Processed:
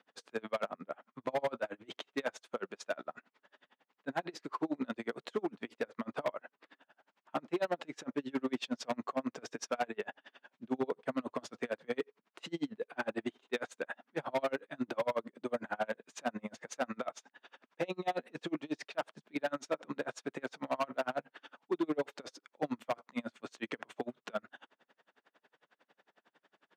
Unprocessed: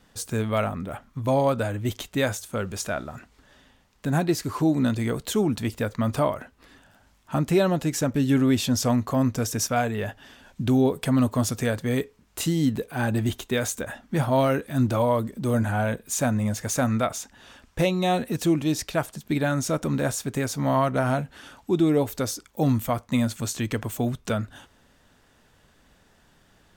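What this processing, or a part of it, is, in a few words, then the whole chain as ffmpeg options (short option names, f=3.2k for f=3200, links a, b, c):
helicopter radio: -af "highpass=390,lowpass=2.9k,aeval=exprs='val(0)*pow(10,-36*(0.5-0.5*cos(2*PI*11*n/s))/20)':c=same,asoftclip=type=hard:threshold=-26.5dB,highpass=f=140:w=0.5412,highpass=f=140:w=1.3066"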